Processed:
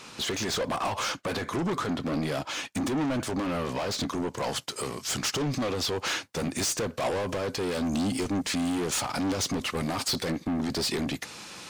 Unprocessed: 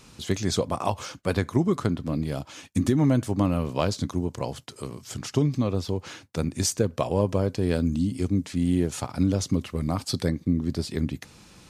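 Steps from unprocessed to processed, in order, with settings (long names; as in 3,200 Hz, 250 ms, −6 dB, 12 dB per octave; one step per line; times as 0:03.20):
mid-hump overdrive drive 32 dB, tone 3,600 Hz, clips at −9 dBFS, from 0:04.37 tone 7,400 Hz
brickwall limiter −15 dBFS, peak gain reduction 5.5 dB
expander for the loud parts 1.5 to 1, over −32 dBFS
level −7.5 dB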